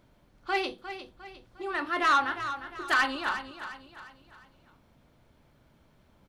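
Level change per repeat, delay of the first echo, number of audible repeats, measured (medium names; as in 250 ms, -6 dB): -7.5 dB, 354 ms, 4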